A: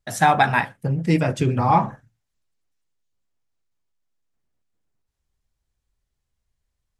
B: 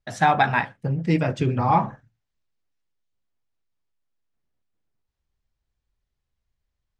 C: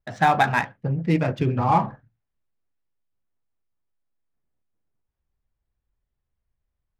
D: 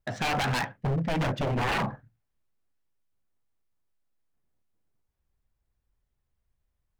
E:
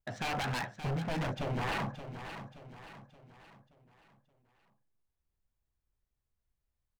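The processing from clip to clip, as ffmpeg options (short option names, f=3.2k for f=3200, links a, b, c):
-af "lowpass=5.2k,volume=-2dB"
-af "adynamicsmooth=sensitivity=4.5:basefreq=2.6k"
-af "alimiter=limit=-14.5dB:level=0:latency=1:release=57,aeval=exprs='0.0668*(abs(mod(val(0)/0.0668+3,4)-2)-1)':c=same,volume=1.5dB"
-af "aecho=1:1:575|1150|1725|2300|2875:0.299|0.134|0.0605|0.0272|0.0122,volume=-7dB"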